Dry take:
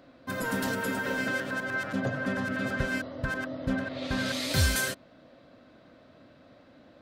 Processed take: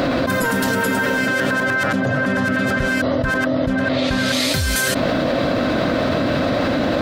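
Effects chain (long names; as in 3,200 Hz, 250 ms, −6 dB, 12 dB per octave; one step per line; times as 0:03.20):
envelope flattener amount 100%
level +2 dB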